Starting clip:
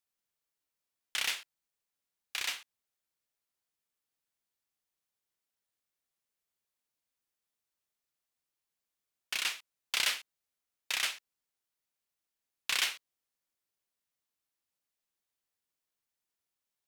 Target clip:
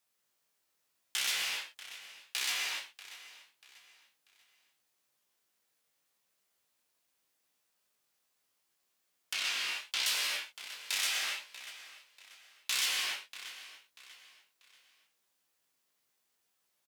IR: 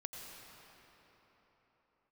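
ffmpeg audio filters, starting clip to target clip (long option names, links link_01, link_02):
-filter_complex "[1:a]atrim=start_sample=2205,afade=type=out:start_time=0.34:duration=0.01,atrim=end_sample=15435[link_01];[0:a][link_01]afir=irnorm=-1:irlink=0,asplit=2[link_02][link_03];[link_03]acompressor=threshold=-47dB:ratio=6,volume=2.5dB[link_04];[link_02][link_04]amix=inputs=2:normalize=0,highpass=frequency=180:poles=1,aecho=1:1:639|1278|1917:0.112|0.0393|0.0137,flanger=delay=15:depth=6.8:speed=0.78,acrossover=split=3800[link_05][link_06];[link_05]alimiter=level_in=13.5dB:limit=-24dB:level=0:latency=1:release=24,volume=-13.5dB[link_07];[link_07][link_06]amix=inputs=2:normalize=0,asettb=1/sr,asplit=3[link_08][link_09][link_10];[link_08]atrim=end=9.334[link_11];[link_09]atrim=start=9.33:end=10.06,asetpts=PTS-STARTPTS,afade=type=in:duration=0.004:curve=qsin,afade=type=out:start_time=0.726:duration=0.004:curve=qsin,acrossover=split=6000[link_12][link_13];[link_13]acompressor=threshold=-55dB:ratio=4:attack=1:release=60[link_14];[link_12][link_14]amix=inputs=2:normalize=0[link_15];[link_10]atrim=start=10.056[link_16];[link_11][link_15]acrossfade=duration=0.004:curve1=hsin:curve2=qsin[link_17];[link_17][link_16]acrossfade=duration=0.004:curve1=qsin:curve2=hsin,asoftclip=type=tanh:threshold=-29.5dB,volume=9dB"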